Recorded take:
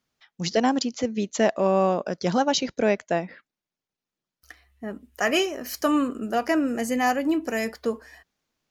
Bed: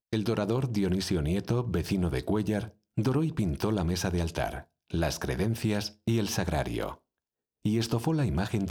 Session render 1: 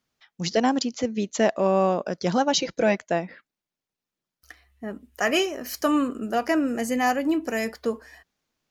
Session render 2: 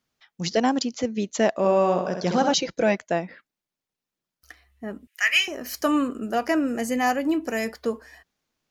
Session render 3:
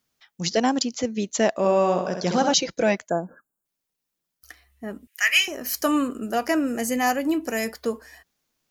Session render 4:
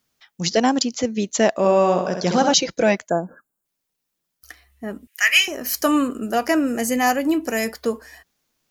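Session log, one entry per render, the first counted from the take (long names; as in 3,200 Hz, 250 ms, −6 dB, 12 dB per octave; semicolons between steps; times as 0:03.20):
0:02.53–0:02.98: comb filter 6 ms
0:01.56–0:02.54: flutter between parallel walls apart 11.3 metres, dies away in 0.66 s; 0:05.07–0:05.48: high-pass with resonance 2,100 Hz, resonance Q 2.9
0:03.09–0:03.65: time-frequency box erased 1,700–6,700 Hz; high-shelf EQ 6,800 Hz +10 dB
level +3.5 dB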